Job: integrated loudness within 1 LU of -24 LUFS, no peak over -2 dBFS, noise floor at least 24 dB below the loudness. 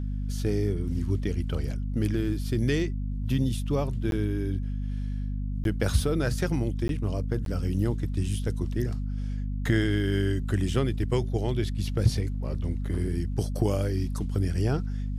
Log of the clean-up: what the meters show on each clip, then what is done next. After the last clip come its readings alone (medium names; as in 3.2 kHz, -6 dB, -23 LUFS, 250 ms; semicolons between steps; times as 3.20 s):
dropouts 4; longest dropout 12 ms; hum 50 Hz; highest harmonic 250 Hz; hum level -28 dBFS; loudness -28.5 LUFS; peak level -9.5 dBFS; loudness target -24.0 LUFS
-> interpolate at 4.11/5.64/6.88/7.45 s, 12 ms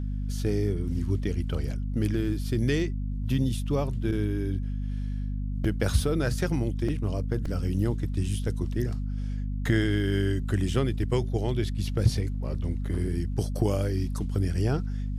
dropouts 0; hum 50 Hz; highest harmonic 250 Hz; hum level -28 dBFS
-> hum notches 50/100/150/200/250 Hz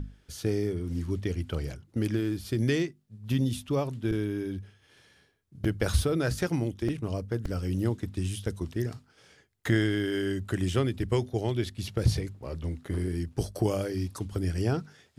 hum not found; loudness -30.5 LUFS; peak level -10.5 dBFS; loudness target -24.0 LUFS
-> trim +6.5 dB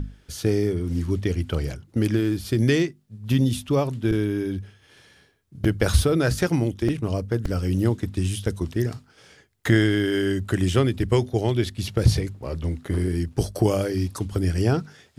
loudness -24.0 LUFS; peak level -4.0 dBFS; noise floor -58 dBFS